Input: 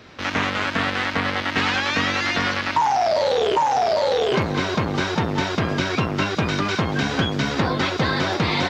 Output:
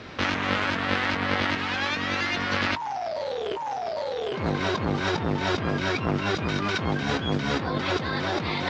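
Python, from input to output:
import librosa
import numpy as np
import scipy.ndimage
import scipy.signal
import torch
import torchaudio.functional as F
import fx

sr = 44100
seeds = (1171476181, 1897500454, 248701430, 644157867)

y = fx.over_compress(x, sr, threshold_db=-27.0, ratio=-1.0)
y = fx.air_absorb(y, sr, metres=64.0)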